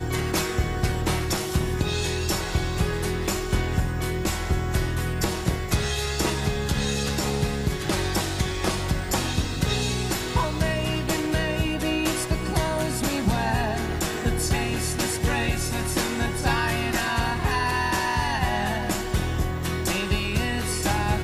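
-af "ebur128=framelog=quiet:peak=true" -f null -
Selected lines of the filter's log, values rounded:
Integrated loudness:
  I:         -25.3 LUFS
  Threshold: -35.3 LUFS
Loudness range:
  LRA:         1.6 LU
  Threshold: -45.3 LUFS
  LRA low:   -26.0 LUFS
  LRA high:  -24.4 LUFS
True peak:
  Peak:       -9.5 dBFS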